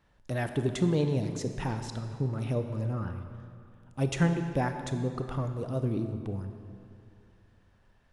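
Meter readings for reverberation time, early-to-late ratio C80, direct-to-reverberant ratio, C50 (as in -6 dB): 2.4 s, 8.5 dB, 7.0 dB, 7.5 dB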